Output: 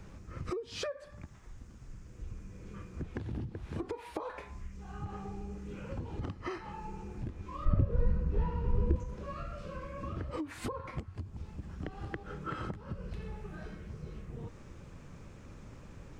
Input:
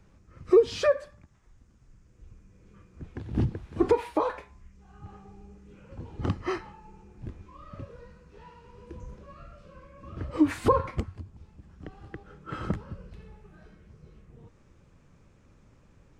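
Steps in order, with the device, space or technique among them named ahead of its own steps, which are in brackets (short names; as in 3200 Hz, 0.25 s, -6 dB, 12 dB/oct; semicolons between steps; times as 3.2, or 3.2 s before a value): serial compression, leveller first (compressor 2.5:1, threshold -32 dBFS, peak gain reduction 12.5 dB; compressor 8:1, threshold -44 dBFS, peak gain reduction 18.5 dB); 7.65–8.96 tilt -4 dB/oct; gain +8.5 dB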